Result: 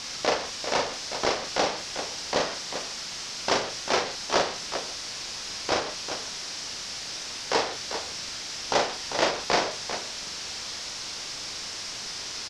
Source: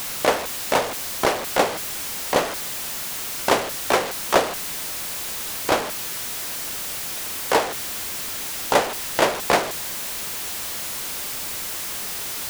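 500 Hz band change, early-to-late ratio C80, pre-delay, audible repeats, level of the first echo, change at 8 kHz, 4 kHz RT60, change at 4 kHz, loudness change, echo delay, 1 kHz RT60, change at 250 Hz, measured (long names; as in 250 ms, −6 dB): −5.5 dB, no reverb audible, no reverb audible, 2, −4.0 dB, −5.5 dB, no reverb audible, 0.0 dB, −5.0 dB, 41 ms, no reverb audible, −6.0 dB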